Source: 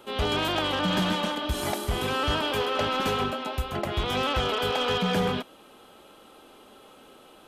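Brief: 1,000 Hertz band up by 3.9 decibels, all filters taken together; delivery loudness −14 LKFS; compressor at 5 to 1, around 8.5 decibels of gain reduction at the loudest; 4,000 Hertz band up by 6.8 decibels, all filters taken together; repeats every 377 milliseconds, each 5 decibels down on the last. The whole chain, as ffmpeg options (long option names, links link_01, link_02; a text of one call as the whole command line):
ffmpeg -i in.wav -af "equalizer=frequency=1000:width_type=o:gain=4.5,equalizer=frequency=4000:width_type=o:gain=9,acompressor=threshold=-29dB:ratio=5,aecho=1:1:377|754|1131|1508|1885|2262|2639:0.562|0.315|0.176|0.0988|0.0553|0.031|0.0173,volume=15.5dB" out.wav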